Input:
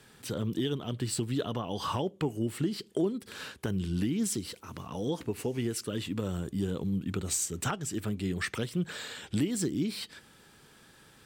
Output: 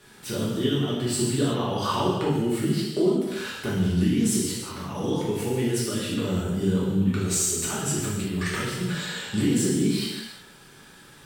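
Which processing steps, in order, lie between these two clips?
0:07.64–0:08.81: compressor whose output falls as the input rises −34 dBFS, ratio −0.5
reverb whose tail is shaped and stops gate 400 ms falling, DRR −7.5 dB

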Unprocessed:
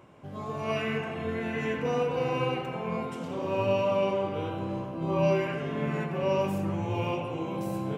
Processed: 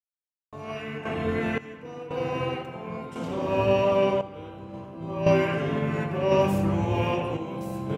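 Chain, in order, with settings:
pitch-shifted copies added −7 semitones −11 dB
sample-and-hold tremolo 1.9 Hz, depth 100%
level +5.5 dB

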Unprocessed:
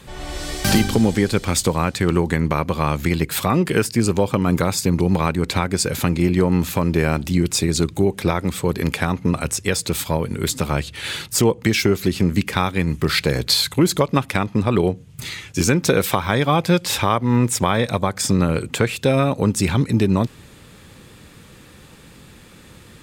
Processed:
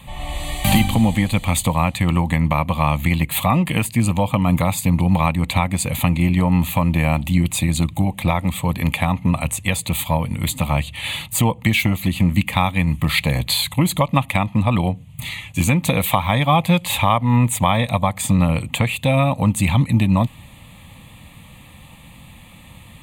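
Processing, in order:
phaser with its sweep stopped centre 1,500 Hz, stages 6
level +4.5 dB

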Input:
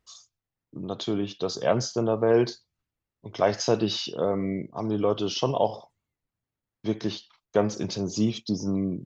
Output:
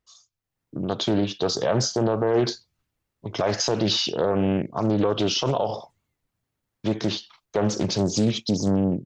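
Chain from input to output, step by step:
brickwall limiter −20 dBFS, peak gain reduction 11 dB
automatic gain control gain up to 13 dB
highs frequency-modulated by the lows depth 0.45 ms
level −5.5 dB

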